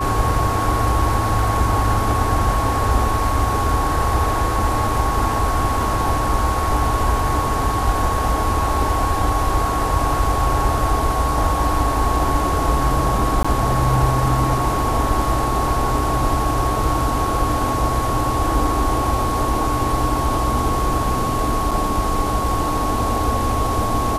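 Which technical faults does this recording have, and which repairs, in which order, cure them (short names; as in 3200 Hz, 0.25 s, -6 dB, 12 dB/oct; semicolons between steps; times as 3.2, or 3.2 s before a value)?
tone 1100 Hz -22 dBFS
13.43–13.45 gap 15 ms
21.71–21.72 gap 5.2 ms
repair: notch 1100 Hz, Q 30; interpolate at 13.43, 15 ms; interpolate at 21.71, 5.2 ms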